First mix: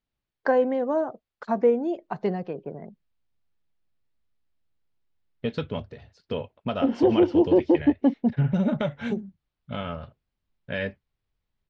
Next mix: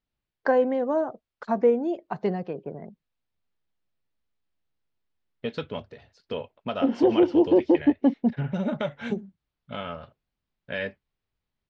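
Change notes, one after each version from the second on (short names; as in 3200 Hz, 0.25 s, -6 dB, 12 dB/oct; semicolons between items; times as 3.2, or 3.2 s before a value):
second voice: add low shelf 180 Hz -11 dB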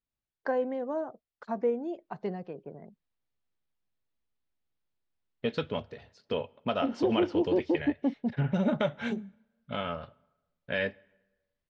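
first voice -8.0 dB; reverb: on, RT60 1.1 s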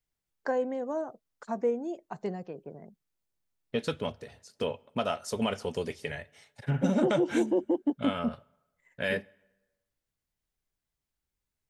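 second voice: entry -1.70 s; master: remove LPF 4400 Hz 24 dB/oct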